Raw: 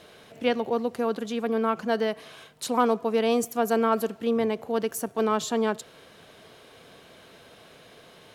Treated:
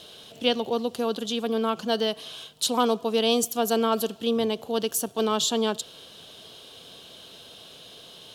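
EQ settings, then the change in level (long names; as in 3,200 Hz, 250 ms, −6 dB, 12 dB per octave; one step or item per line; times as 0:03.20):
high shelf with overshoot 2,600 Hz +6.5 dB, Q 3
0.0 dB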